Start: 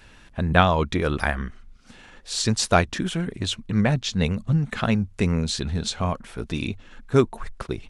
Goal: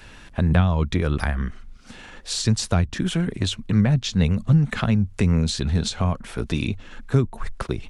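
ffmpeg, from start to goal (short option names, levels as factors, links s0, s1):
-filter_complex "[0:a]acrossover=split=190[s0][s1];[s1]acompressor=threshold=0.0316:ratio=6[s2];[s0][s2]amix=inputs=2:normalize=0,volume=1.88"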